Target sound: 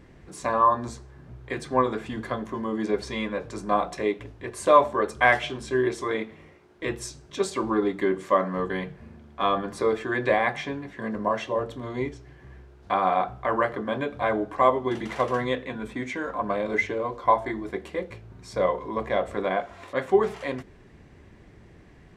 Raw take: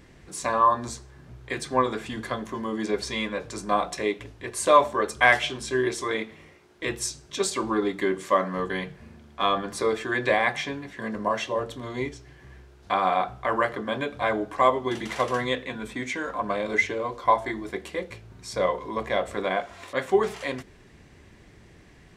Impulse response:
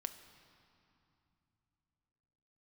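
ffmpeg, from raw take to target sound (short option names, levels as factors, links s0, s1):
-af "highshelf=f=2400:g=-10,volume=1.19"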